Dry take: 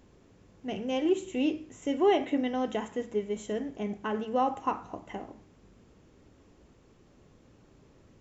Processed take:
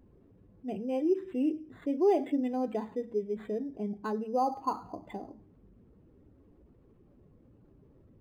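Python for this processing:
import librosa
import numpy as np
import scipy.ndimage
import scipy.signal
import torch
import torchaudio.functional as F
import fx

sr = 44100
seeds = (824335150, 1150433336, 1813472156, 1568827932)

y = fx.spec_expand(x, sr, power=1.5)
y = np.interp(np.arange(len(y)), np.arange(len(y))[::8], y[::8])
y = y * librosa.db_to_amplitude(-1.0)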